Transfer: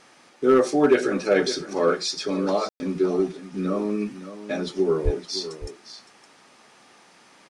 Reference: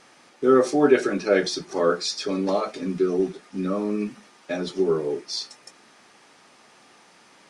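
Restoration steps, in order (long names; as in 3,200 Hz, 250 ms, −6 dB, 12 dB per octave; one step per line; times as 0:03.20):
clipped peaks rebuilt −9.5 dBFS
0:05.04–0:05.16: high-pass filter 140 Hz 24 dB per octave
ambience match 0:02.69–0:02.80
echo removal 564 ms −13 dB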